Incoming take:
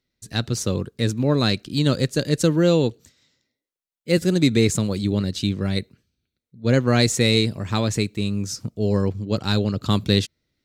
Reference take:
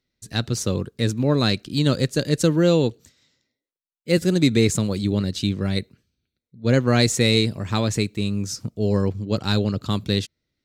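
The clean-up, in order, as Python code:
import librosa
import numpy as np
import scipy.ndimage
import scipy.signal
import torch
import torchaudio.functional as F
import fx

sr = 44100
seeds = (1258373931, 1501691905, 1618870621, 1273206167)

y = fx.gain(x, sr, db=fx.steps((0.0, 0.0), (9.82, -3.5)))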